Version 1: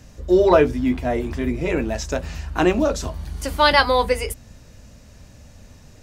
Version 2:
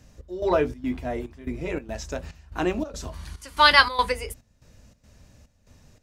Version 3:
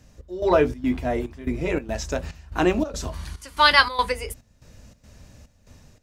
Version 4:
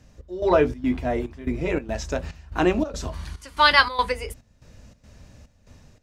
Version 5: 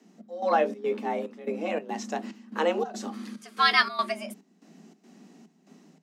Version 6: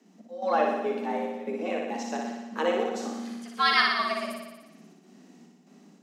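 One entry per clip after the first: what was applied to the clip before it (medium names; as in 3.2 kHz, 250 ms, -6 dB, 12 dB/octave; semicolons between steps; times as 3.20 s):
time-frequency box 3.13–4.11 s, 900–12000 Hz +9 dB; trance gate "xx..xxx.xx" 143 bpm -12 dB; trim -7.5 dB
level rider gain up to 5 dB
treble shelf 8.4 kHz -8.5 dB
frequency shift +160 Hz; trim -5 dB
flutter echo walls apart 10.2 m, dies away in 1.1 s; trim -2.5 dB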